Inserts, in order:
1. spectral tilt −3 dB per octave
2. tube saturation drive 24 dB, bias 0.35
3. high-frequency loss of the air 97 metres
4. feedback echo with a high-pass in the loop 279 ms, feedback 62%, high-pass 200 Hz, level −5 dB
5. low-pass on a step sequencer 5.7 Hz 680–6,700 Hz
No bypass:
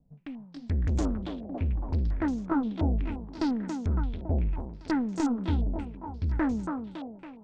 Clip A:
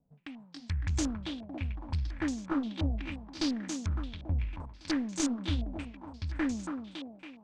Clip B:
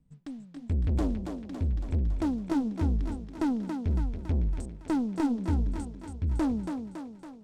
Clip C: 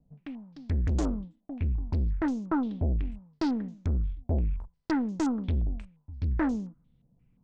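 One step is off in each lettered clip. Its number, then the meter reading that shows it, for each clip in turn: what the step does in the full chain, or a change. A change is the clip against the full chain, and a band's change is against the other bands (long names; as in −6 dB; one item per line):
1, 4 kHz band +12.5 dB
5, 2 kHz band −4.0 dB
4, change in momentary loudness spread +2 LU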